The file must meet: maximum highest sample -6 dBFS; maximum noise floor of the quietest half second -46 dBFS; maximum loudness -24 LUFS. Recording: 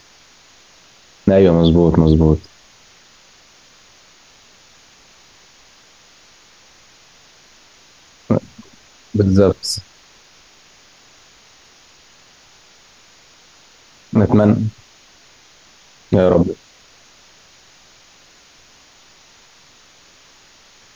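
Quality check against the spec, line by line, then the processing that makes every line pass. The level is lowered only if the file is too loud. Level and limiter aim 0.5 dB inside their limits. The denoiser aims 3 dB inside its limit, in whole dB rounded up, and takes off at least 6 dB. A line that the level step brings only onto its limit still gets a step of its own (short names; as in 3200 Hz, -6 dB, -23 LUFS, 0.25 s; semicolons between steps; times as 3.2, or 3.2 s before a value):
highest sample -1.5 dBFS: fail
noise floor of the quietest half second -48 dBFS: OK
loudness -15.0 LUFS: fail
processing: gain -9.5 dB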